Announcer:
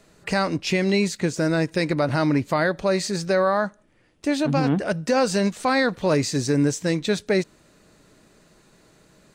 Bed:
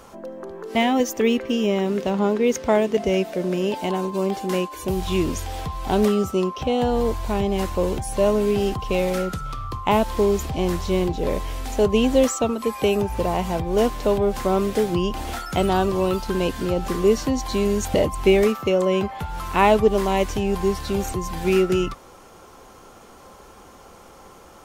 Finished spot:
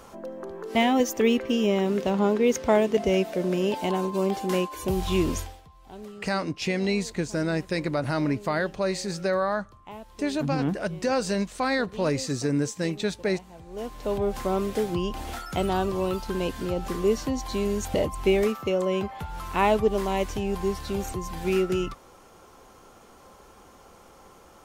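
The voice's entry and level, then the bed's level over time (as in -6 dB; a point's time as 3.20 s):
5.95 s, -5.0 dB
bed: 5.40 s -2 dB
5.62 s -23 dB
13.53 s -23 dB
14.20 s -5.5 dB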